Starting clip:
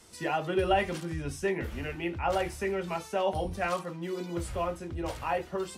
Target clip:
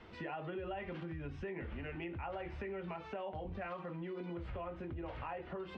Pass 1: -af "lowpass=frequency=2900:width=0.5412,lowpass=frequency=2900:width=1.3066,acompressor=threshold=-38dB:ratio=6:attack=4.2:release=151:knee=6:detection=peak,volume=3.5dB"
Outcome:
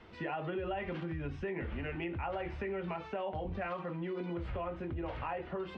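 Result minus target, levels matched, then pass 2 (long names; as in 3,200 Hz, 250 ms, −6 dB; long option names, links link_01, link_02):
downward compressor: peak gain reduction −5 dB
-af "lowpass=frequency=2900:width=0.5412,lowpass=frequency=2900:width=1.3066,acompressor=threshold=-44dB:ratio=6:attack=4.2:release=151:knee=6:detection=peak,volume=3.5dB"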